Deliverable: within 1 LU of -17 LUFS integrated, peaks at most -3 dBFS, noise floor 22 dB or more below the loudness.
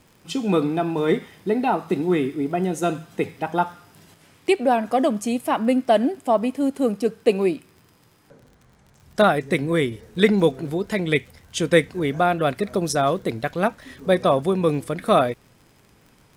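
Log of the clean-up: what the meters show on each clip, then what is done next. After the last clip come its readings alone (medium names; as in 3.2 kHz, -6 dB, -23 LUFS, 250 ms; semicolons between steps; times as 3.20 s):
tick rate 43 per s; loudness -22.0 LUFS; peak level -3.0 dBFS; loudness target -17.0 LUFS
-> de-click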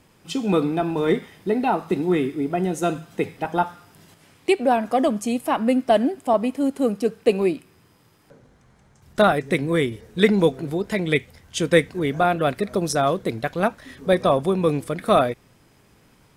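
tick rate 0.12 per s; loudness -22.0 LUFS; peak level -3.0 dBFS; loudness target -17.0 LUFS
-> trim +5 dB; peak limiter -3 dBFS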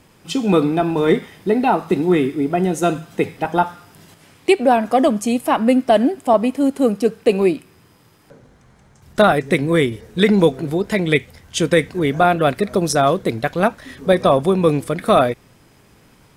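loudness -17.5 LUFS; peak level -3.0 dBFS; noise floor -52 dBFS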